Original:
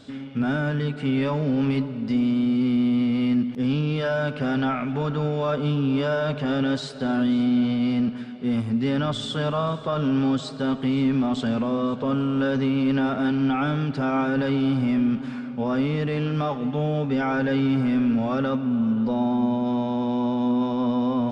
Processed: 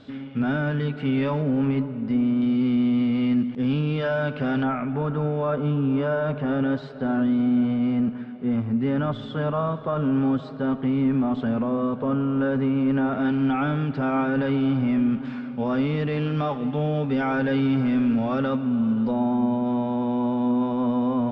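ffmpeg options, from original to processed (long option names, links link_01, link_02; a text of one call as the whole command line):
ffmpeg -i in.wav -af "asetnsamples=nb_out_samples=441:pad=0,asendcmd='1.42 lowpass f 2000;2.42 lowpass f 3400;4.63 lowpass f 1800;13.13 lowpass f 2800;15.25 lowpass f 4200;19.11 lowpass f 2400',lowpass=3500" out.wav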